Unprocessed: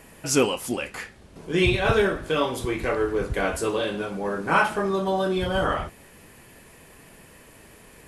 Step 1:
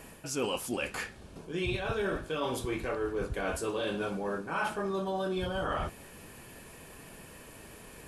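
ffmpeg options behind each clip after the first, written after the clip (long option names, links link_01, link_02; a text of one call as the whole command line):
ffmpeg -i in.wav -af "bandreject=frequency=2000:width=10,areverse,acompressor=threshold=-30dB:ratio=6,areverse" out.wav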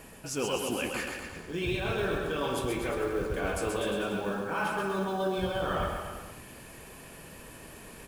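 ffmpeg -i in.wav -filter_complex "[0:a]acrusher=bits=7:mode=log:mix=0:aa=0.000001,asplit=2[link_01][link_02];[link_02]aecho=0:1:130|247|352.3|447.1|532.4:0.631|0.398|0.251|0.158|0.1[link_03];[link_01][link_03]amix=inputs=2:normalize=0" out.wav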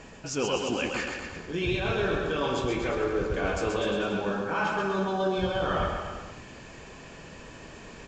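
ffmpeg -i in.wav -af "aresample=16000,aresample=44100,volume=3dB" out.wav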